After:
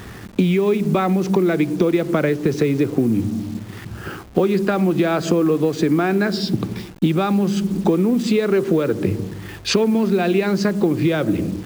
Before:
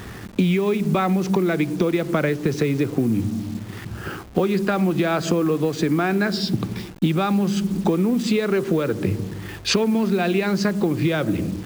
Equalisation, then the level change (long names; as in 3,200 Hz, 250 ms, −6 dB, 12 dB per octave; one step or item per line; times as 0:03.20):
dynamic equaliser 370 Hz, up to +4 dB, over −31 dBFS, Q 0.82
0.0 dB